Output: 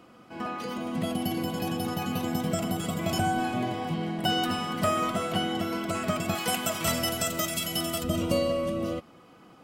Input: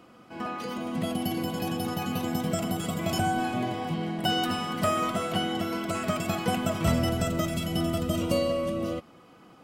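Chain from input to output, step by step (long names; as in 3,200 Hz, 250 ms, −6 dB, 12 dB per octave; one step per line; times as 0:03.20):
0:06.35–0:08.04: spectral tilt +3 dB per octave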